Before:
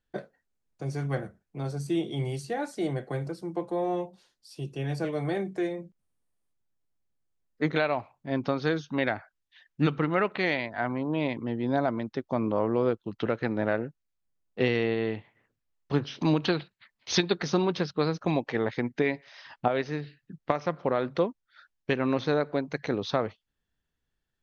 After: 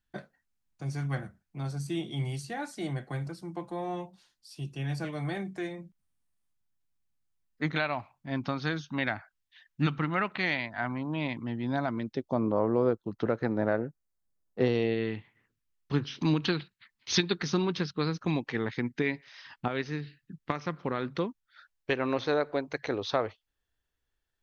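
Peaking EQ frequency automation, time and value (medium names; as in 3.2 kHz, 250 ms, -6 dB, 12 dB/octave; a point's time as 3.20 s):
peaking EQ -11 dB 1 oct
11.86 s 460 Hz
12.44 s 2.9 kHz
14.61 s 2.9 kHz
15.10 s 620 Hz
21.25 s 620 Hz
21.93 s 180 Hz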